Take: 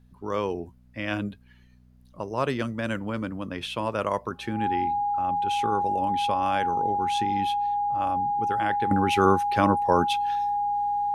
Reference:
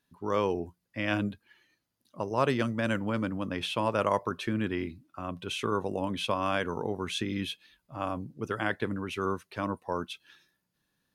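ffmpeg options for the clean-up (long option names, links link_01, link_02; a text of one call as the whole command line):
ffmpeg -i in.wav -af "bandreject=frequency=61.6:width_type=h:width=4,bandreject=frequency=123.2:width_type=h:width=4,bandreject=frequency=184.8:width_type=h:width=4,bandreject=frequency=246.4:width_type=h:width=4,bandreject=frequency=820:width=30,agate=range=-21dB:threshold=-45dB,asetnsamples=nb_out_samples=441:pad=0,asendcmd='8.91 volume volume -10.5dB',volume=0dB" out.wav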